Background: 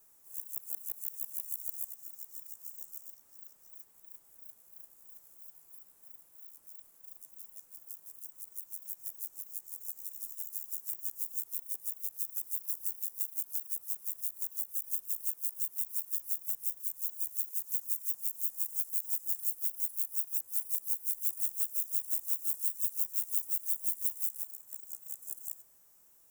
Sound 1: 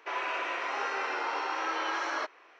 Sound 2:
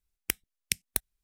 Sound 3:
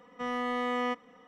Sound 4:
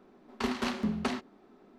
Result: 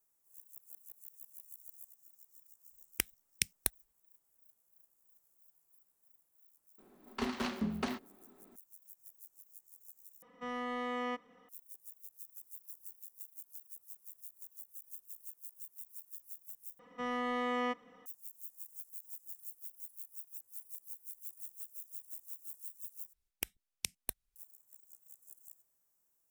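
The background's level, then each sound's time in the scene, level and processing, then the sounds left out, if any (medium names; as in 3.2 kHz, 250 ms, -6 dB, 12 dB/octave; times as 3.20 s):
background -14.5 dB
2.70 s: add 2 -3.5 dB
6.78 s: add 4 -4.5 dB
10.22 s: replace with 3 -6.5 dB
16.79 s: replace with 3 -3.5 dB
23.13 s: replace with 2 -3.5 dB + compression, threshold -26 dBFS
not used: 1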